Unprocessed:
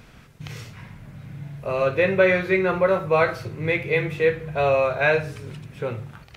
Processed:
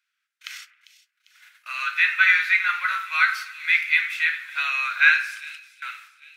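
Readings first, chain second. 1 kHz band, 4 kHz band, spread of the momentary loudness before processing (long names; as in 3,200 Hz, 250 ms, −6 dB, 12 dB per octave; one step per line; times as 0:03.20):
−2.0 dB, +7.5 dB, 20 LU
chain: noise gate −35 dBFS, range −31 dB
elliptic high-pass filter 1,400 Hz, stop band 70 dB
on a send: echo with a time of its own for lows and highs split 2,500 Hz, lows 89 ms, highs 398 ms, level −15 dB
on the sum: level +7.5 dB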